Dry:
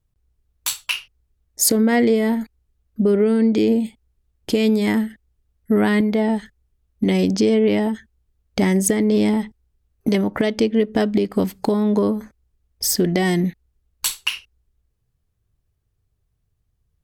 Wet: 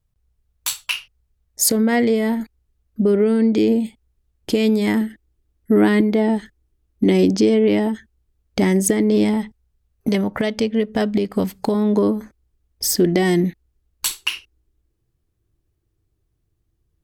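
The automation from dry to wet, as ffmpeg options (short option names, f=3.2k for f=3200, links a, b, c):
-af "asetnsamples=n=441:p=0,asendcmd='2.4 equalizer g 2;5.01 equalizer g 11.5;7.31 equalizer g 5;9.24 equalizer g -4;10.32 equalizer g -10.5;11.01 equalizer g -4;11.75 equalizer g 6;14.11 equalizer g 14.5',equalizer=f=330:t=o:w=0.39:g=-6"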